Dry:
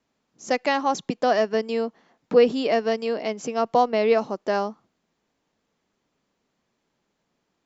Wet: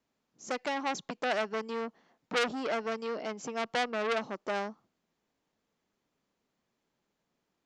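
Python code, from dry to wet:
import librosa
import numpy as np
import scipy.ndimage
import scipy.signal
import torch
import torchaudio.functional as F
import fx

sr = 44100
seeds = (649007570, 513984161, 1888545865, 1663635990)

y = fx.transformer_sat(x, sr, knee_hz=3100.0)
y = y * 10.0 ** (-6.5 / 20.0)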